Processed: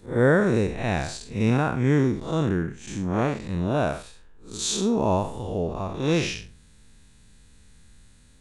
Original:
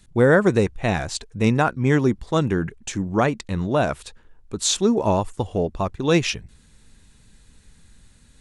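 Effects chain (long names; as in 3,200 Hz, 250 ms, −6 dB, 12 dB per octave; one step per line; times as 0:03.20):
spectrum smeared in time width 153 ms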